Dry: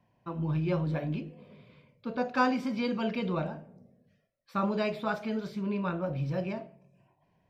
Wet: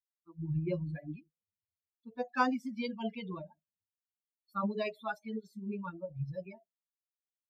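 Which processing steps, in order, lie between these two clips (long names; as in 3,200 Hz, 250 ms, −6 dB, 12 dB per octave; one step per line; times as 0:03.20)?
spectral dynamics exaggerated over time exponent 3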